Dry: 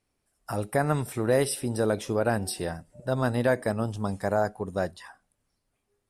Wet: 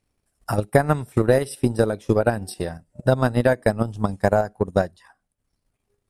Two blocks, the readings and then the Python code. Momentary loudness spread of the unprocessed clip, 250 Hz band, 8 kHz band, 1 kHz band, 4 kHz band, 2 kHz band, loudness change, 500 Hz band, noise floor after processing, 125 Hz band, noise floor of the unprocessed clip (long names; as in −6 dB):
9 LU, +6.0 dB, −2.5 dB, +5.5 dB, +0.5 dB, +5.0 dB, +6.0 dB, +6.0 dB, −77 dBFS, +7.0 dB, −78 dBFS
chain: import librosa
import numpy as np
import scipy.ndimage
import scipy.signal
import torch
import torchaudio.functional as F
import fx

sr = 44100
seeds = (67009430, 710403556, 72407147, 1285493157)

p1 = fx.low_shelf(x, sr, hz=210.0, db=5.5)
p2 = fx.transient(p1, sr, attack_db=11, sustain_db=-8)
p3 = fx.level_steps(p2, sr, step_db=20)
p4 = p2 + F.gain(torch.from_numpy(p3), 0.0).numpy()
y = F.gain(torch.from_numpy(p4), -3.5).numpy()